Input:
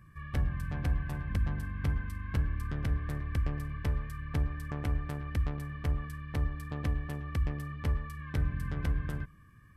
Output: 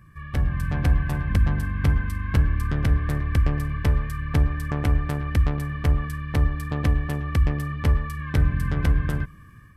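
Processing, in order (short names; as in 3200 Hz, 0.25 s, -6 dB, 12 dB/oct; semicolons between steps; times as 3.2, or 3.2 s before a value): AGC gain up to 5.5 dB; gain +5 dB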